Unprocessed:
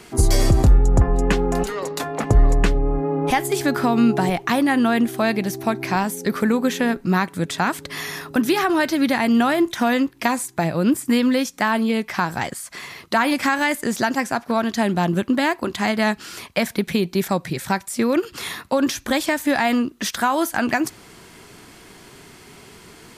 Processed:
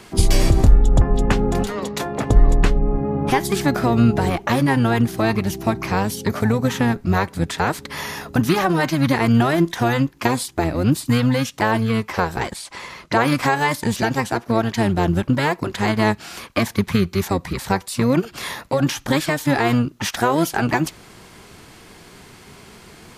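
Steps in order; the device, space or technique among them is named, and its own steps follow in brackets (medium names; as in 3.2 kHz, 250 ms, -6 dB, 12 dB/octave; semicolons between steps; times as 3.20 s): octave pedal (harmony voices -12 st -2 dB); 12.56–13.20 s: low-pass 9.8 kHz 12 dB/octave; trim -1 dB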